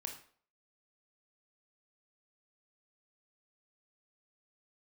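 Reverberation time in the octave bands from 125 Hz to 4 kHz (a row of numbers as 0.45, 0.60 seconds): 0.45, 0.45, 0.50, 0.50, 0.45, 0.40 seconds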